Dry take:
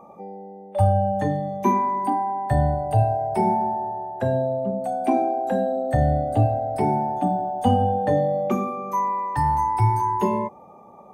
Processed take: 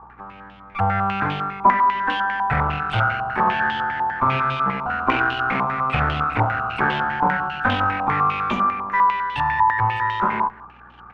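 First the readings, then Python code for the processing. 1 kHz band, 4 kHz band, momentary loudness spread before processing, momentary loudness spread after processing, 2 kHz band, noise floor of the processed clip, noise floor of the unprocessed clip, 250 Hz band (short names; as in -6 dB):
+3.5 dB, n/a, 6 LU, 5 LU, +19.0 dB, -44 dBFS, -47 dBFS, -3.5 dB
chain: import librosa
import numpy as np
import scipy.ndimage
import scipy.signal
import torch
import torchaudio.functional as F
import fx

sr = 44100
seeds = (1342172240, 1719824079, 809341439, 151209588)

p1 = fx.lower_of_two(x, sr, delay_ms=0.86)
p2 = fx.tilt_eq(p1, sr, slope=2.0)
p3 = fx.rider(p2, sr, range_db=3, speed_s=0.5)
p4 = fx.add_hum(p3, sr, base_hz=60, snr_db=29)
p5 = fx.low_shelf(p4, sr, hz=180.0, db=3.0)
p6 = p5 + fx.echo_single(p5, sr, ms=175, db=-22.0, dry=0)
y = fx.filter_held_lowpass(p6, sr, hz=10.0, low_hz=960.0, high_hz=3100.0)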